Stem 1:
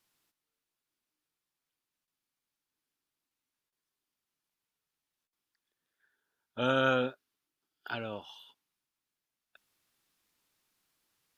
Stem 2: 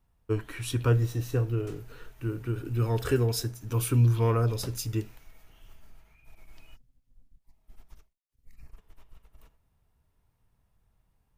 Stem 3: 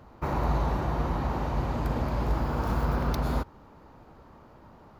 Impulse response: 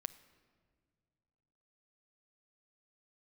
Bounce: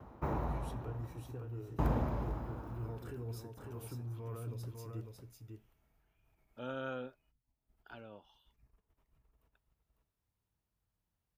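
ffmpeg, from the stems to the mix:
-filter_complex "[0:a]volume=-12dB[a];[1:a]alimiter=limit=-22dB:level=0:latency=1:release=11,volume=-15dB,asplit=2[b][c];[c]volume=-4.5dB[d];[2:a]bandreject=f=4.5k:w=9.3,aeval=exprs='val(0)*pow(10,-37*if(lt(mod(0.56*n/s,1),2*abs(0.56)/1000),1-mod(0.56*n/s,1)/(2*abs(0.56)/1000),(mod(0.56*n/s,1)-2*abs(0.56)/1000)/(1-2*abs(0.56)/1000))/20)':c=same,volume=0.5dB[e];[d]aecho=0:1:551:1[f];[a][b][e][f]amix=inputs=4:normalize=0,highpass=45,equalizer=f=5.3k:w=0.33:g=-8"

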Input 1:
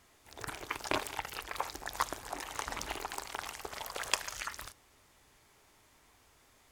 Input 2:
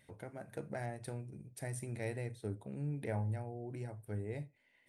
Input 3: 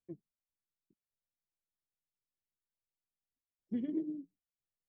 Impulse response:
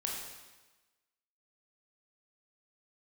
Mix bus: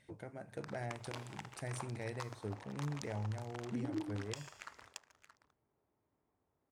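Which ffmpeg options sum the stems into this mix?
-filter_complex "[0:a]highpass=93,adynamicsmooth=sensitivity=7:basefreq=680,highshelf=f=5.7k:g=6,adelay=200,volume=-11.5dB,asplit=3[a][b][c];[b]volume=-15.5dB[d];[c]volume=-12.5dB[e];[1:a]volume=-1dB[f];[2:a]volume=-4dB[g];[a][f]amix=inputs=2:normalize=0,adynamicsmooth=sensitivity=7:basefreq=7.2k,alimiter=level_in=6dB:limit=-24dB:level=0:latency=1:release=185,volume=-6dB,volume=0dB[h];[3:a]atrim=start_sample=2205[i];[d][i]afir=irnorm=-1:irlink=0[j];[e]aecho=0:1:625:1[k];[g][h][j][k]amix=inputs=4:normalize=0,equalizer=f=7k:w=0.82:g=6.5"

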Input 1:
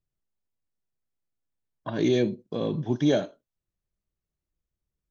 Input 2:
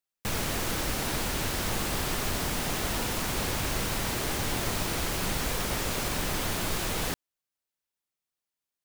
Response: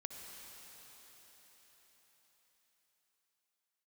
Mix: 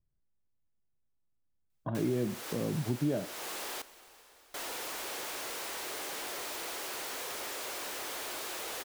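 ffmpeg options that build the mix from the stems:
-filter_complex "[0:a]lowpass=1.8k,lowshelf=f=240:g=9,volume=-2.5dB[a];[1:a]highpass=f=360:w=0.5412,highpass=f=360:w=1.3066,asoftclip=type=tanh:threshold=-36dB,adelay=1700,volume=-2.5dB,asplit=3[b][c][d];[b]atrim=end=3.82,asetpts=PTS-STARTPTS,afade=t=out:st=3.816:d=0.004:c=hsin[e];[c]atrim=start=3.82:end=4.54,asetpts=PTS-STARTPTS,volume=0[f];[d]atrim=start=4.54,asetpts=PTS-STARTPTS,afade=t=in:d=0.004:c=hsin[g];[e][f][g]concat=n=3:v=0:a=1,asplit=2[h][i];[i]volume=-8dB[j];[2:a]atrim=start_sample=2205[k];[j][k]afir=irnorm=-1:irlink=0[l];[a][h][l]amix=inputs=3:normalize=0,acompressor=threshold=-35dB:ratio=2"

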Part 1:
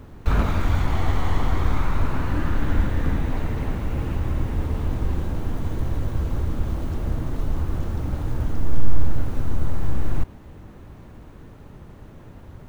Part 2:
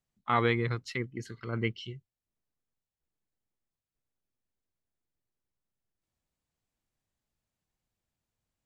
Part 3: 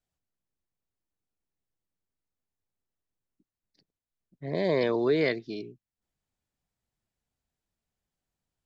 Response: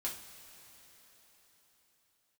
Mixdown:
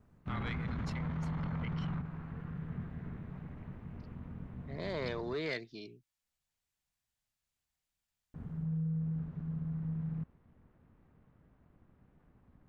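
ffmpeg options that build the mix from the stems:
-filter_complex "[0:a]aeval=exprs='val(0)*sin(2*PI*160*n/s)':c=same,lowpass=2.1k,volume=1dB,asplit=3[a][b][c];[a]atrim=end=5.34,asetpts=PTS-STARTPTS,afade=t=out:st=5.336:d=0.004:c=hsin[d];[b]atrim=start=5.34:end=8.34,asetpts=PTS-STARTPTS,volume=0[e];[c]atrim=start=8.34,asetpts=PTS-STARTPTS,afade=t=in:d=0.004:c=hsin[f];[d][e][f]concat=n=3:v=0:a=1[g];[1:a]highpass=f=1.1k:p=1,volume=1dB,asplit=2[h][i];[2:a]adelay=250,volume=-5dB[j];[i]apad=whole_len=559571[k];[g][k]sidechaingate=range=-17dB:threshold=-57dB:ratio=16:detection=peak[l];[l][h]amix=inputs=2:normalize=0,alimiter=level_in=1dB:limit=-24dB:level=0:latency=1:release=61,volume=-1dB,volume=0dB[m];[j][m]amix=inputs=2:normalize=0,asoftclip=type=tanh:threshold=-23dB,equalizer=f=360:w=0.51:g=-7"

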